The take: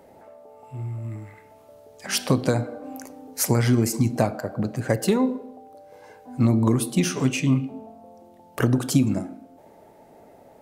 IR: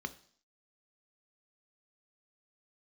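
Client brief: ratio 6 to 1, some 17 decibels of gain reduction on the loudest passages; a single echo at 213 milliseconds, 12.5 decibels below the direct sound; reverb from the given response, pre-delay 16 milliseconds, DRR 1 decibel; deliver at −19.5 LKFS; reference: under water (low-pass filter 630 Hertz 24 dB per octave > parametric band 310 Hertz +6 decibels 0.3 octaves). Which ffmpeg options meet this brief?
-filter_complex "[0:a]acompressor=threshold=-34dB:ratio=6,aecho=1:1:213:0.237,asplit=2[link_01][link_02];[1:a]atrim=start_sample=2205,adelay=16[link_03];[link_02][link_03]afir=irnorm=-1:irlink=0,volume=-2dB[link_04];[link_01][link_04]amix=inputs=2:normalize=0,lowpass=frequency=630:width=0.5412,lowpass=frequency=630:width=1.3066,equalizer=frequency=310:width_type=o:width=0.3:gain=6,volume=16.5dB"

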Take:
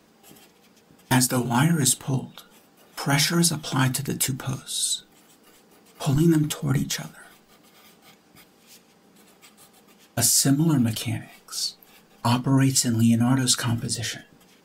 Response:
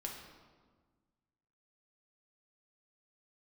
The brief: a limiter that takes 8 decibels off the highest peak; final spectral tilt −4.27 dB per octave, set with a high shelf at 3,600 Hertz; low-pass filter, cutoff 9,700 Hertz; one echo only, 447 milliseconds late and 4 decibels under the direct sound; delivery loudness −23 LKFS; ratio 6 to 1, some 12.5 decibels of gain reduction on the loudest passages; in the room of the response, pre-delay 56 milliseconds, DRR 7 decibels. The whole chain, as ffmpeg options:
-filter_complex "[0:a]lowpass=9700,highshelf=frequency=3600:gain=-3.5,acompressor=threshold=-29dB:ratio=6,alimiter=level_in=1dB:limit=-24dB:level=0:latency=1,volume=-1dB,aecho=1:1:447:0.631,asplit=2[link_01][link_02];[1:a]atrim=start_sample=2205,adelay=56[link_03];[link_02][link_03]afir=irnorm=-1:irlink=0,volume=-6dB[link_04];[link_01][link_04]amix=inputs=2:normalize=0,volume=10.5dB"

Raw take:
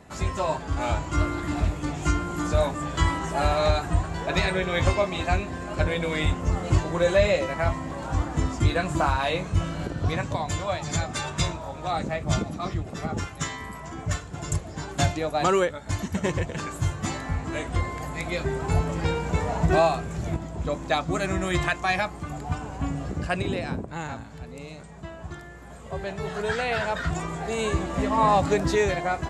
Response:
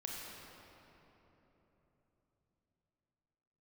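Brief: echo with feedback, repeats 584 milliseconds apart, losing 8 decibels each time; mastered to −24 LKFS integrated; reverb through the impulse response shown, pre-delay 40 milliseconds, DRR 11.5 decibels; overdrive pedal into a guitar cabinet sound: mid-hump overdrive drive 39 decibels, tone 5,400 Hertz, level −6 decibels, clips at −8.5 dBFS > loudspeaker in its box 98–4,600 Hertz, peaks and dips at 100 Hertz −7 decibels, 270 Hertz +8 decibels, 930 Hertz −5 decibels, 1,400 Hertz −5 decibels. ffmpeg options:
-filter_complex "[0:a]aecho=1:1:584|1168|1752|2336|2920:0.398|0.159|0.0637|0.0255|0.0102,asplit=2[link_01][link_02];[1:a]atrim=start_sample=2205,adelay=40[link_03];[link_02][link_03]afir=irnorm=-1:irlink=0,volume=-11.5dB[link_04];[link_01][link_04]amix=inputs=2:normalize=0,asplit=2[link_05][link_06];[link_06]highpass=frequency=720:poles=1,volume=39dB,asoftclip=type=tanh:threshold=-8.5dB[link_07];[link_05][link_07]amix=inputs=2:normalize=0,lowpass=frequency=5400:poles=1,volume=-6dB,highpass=98,equalizer=frequency=100:width_type=q:width=4:gain=-7,equalizer=frequency=270:width_type=q:width=4:gain=8,equalizer=frequency=930:width_type=q:width=4:gain=-5,equalizer=frequency=1400:width_type=q:width=4:gain=-5,lowpass=frequency=4600:width=0.5412,lowpass=frequency=4600:width=1.3066,volume=-8.5dB"

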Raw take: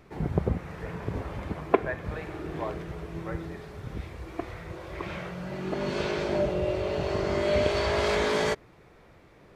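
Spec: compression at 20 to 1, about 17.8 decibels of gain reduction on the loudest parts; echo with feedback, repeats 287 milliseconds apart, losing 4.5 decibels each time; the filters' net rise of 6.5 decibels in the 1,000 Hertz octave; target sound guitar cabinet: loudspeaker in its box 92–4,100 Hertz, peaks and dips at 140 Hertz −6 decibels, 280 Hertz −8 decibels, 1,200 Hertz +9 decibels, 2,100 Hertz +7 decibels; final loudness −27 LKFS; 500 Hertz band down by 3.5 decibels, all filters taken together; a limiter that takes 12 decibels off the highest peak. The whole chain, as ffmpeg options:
ffmpeg -i in.wav -af "equalizer=frequency=500:width_type=o:gain=-5.5,equalizer=frequency=1000:width_type=o:gain=4.5,acompressor=threshold=-34dB:ratio=20,alimiter=level_in=7.5dB:limit=-24dB:level=0:latency=1,volume=-7.5dB,highpass=92,equalizer=frequency=140:width_type=q:width=4:gain=-6,equalizer=frequency=280:width_type=q:width=4:gain=-8,equalizer=frequency=1200:width_type=q:width=4:gain=9,equalizer=frequency=2100:width_type=q:width=4:gain=7,lowpass=frequency=4100:width=0.5412,lowpass=frequency=4100:width=1.3066,aecho=1:1:287|574|861|1148|1435|1722|2009|2296|2583:0.596|0.357|0.214|0.129|0.0772|0.0463|0.0278|0.0167|0.01,volume=11.5dB" out.wav

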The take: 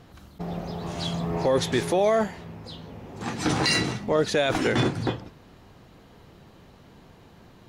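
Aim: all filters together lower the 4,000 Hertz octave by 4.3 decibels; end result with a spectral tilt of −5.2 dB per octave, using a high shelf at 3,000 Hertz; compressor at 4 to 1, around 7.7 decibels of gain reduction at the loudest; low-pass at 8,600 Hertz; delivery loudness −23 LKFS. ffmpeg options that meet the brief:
ffmpeg -i in.wav -af "lowpass=8600,highshelf=frequency=3000:gain=4,equalizer=frequency=4000:width_type=o:gain=-8,acompressor=threshold=-27dB:ratio=4,volume=9dB" out.wav

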